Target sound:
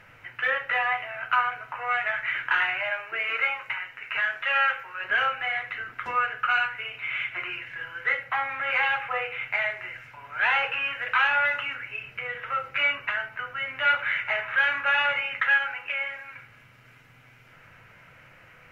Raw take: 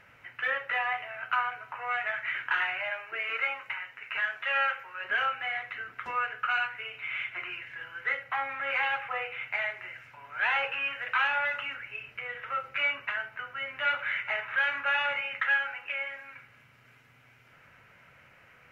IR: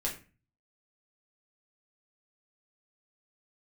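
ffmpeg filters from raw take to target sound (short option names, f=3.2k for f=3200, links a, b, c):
-filter_complex "[0:a]asplit=2[a][b];[1:a]atrim=start_sample=2205,lowshelf=f=190:g=10.5[c];[b][c]afir=irnorm=-1:irlink=0,volume=-13.5dB[d];[a][d]amix=inputs=2:normalize=0,volume=3dB"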